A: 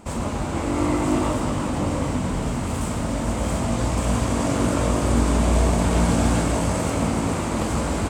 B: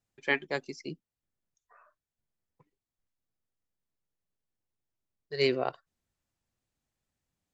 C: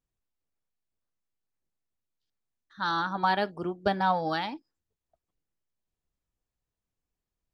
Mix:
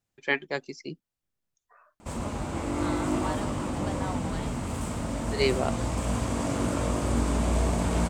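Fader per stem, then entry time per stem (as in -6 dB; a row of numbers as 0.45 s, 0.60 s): -6.5 dB, +1.5 dB, -12.0 dB; 2.00 s, 0.00 s, 0.00 s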